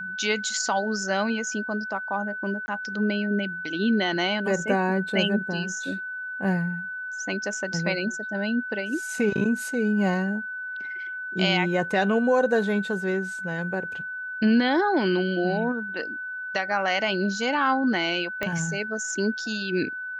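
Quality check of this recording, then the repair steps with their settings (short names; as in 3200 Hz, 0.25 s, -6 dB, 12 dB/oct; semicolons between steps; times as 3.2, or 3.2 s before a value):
tone 1500 Hz -31 dBFS
2.66–2.68 gap 20 ms
18.43 pop -13 dBFS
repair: de-click; notch 1500 Hz, Q 30; interpolate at 2.66, 20 ms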